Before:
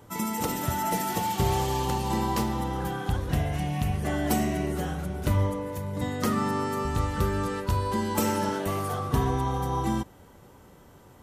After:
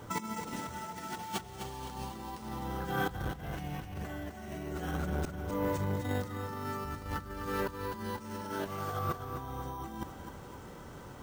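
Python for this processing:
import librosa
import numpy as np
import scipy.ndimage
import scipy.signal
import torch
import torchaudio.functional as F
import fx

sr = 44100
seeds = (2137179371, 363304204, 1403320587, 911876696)

y = fx.high_shelf(x, sr, hz=8300.0, db=10.5)
y = fx.over_compress(y, sr, threshold_db=-33.0, ratio=-0.5)
y = np.repeat(scipy.signal.resample_poly(y, 1, 3), 3)[:len(y)]
y = fx.peak_eq(y, sr, hz=1400.0, db=4.5, octaves=0.41)
y = fx.echo_feedback(y, sr, ms=256, feedback_pct=47, wet_db=-8.5)
y = fx.transformer_sat(y, sr, knee_hz=260.0)
y = F.gain(torch.from_numpy(y), -3.0).numpy()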